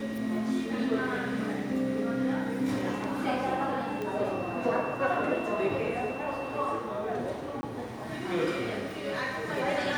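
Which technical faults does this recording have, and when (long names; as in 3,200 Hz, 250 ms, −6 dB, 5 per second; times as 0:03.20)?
0:04.02: click −23 dBFS
0:07.61–0:07.63: drop-out 20 ms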